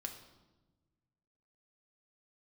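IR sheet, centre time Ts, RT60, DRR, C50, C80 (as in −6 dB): 20 ms, 1.2 s, 3.0 dB, 8.0 dB, 10.5 dB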